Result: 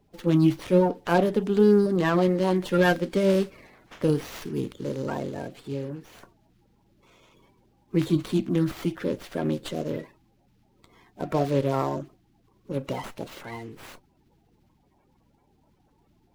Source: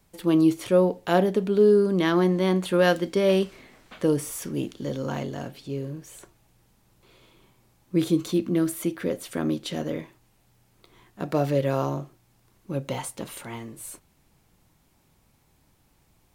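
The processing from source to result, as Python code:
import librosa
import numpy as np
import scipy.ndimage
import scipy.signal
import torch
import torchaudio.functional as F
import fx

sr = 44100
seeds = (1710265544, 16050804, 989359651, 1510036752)

y = fx.spec_quant(x, sr, step_db=30)
y = fx.running_max(y, sr, window=5)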